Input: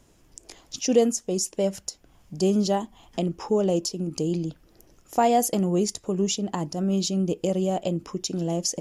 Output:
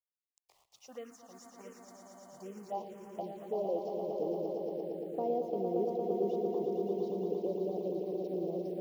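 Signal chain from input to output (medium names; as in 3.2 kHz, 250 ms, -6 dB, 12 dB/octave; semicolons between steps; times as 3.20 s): band-pass sweep 1.2 kHz -> 430 Hz, 1.52–4.45 s; word length cut 10-bit, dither none; echo with a slow build-up 115 ms, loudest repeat 5, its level -7 dB; touch-sensitive phaser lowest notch 250 Hz, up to 1.6 kHz, full sweep at -25 dBFS; trim -6.5 dB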